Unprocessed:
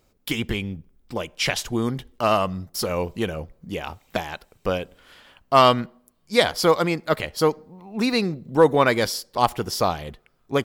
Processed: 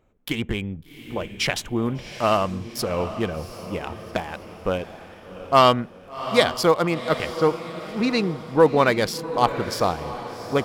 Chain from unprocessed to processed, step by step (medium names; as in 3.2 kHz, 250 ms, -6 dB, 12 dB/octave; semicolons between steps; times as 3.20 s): local Wiener filter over 9 samples; 7.34–8.76 s: level-controlled noise filter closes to 2.4 kHz, open at -12.5 dBFS; on a send: echo that smears into a reverb 745 ms, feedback 45%, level -12 dB